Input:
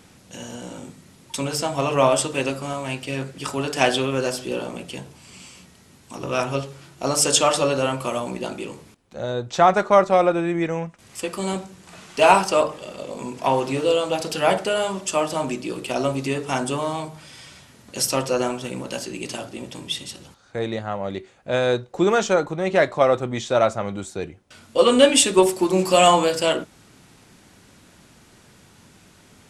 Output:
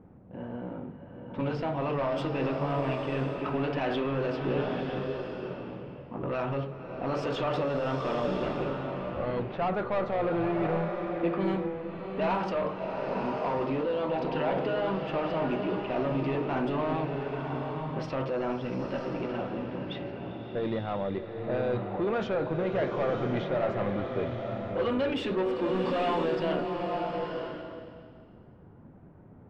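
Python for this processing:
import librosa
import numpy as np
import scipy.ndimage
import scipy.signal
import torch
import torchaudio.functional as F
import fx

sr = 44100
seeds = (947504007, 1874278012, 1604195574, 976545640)

p1 = fx.lower_of_two(x, sr, delay_ms=0.4, at=(8.24, 9.4))
p2 = fx.high_shelf(p1, sr, hz=5900.0, db=-9.5)
p3 = fx.over_compress(p2, sr, threshold_db=-25.0, ratio=-0.5)
p4 = p2 + (p3 * librosa.db_to_amplitude(-2.0))
p5 = fx.env_lowpass(p4, sr, base_hz=710.0, full_db=-12.5)
p6 = 10.0 ** (-16.0 / 20.0) * np.tanh(p5 / 10.0 ** (-16.0 / 20.0))
p7 = fx.air_absorb(p6, sr, metres=330.0)
p8 = fx.rev_bloom(p7, sr, seeds[0], attack_ms=980, drr_db=3.0)
y = p8 * librosa.db_to_amplitude(-7.5)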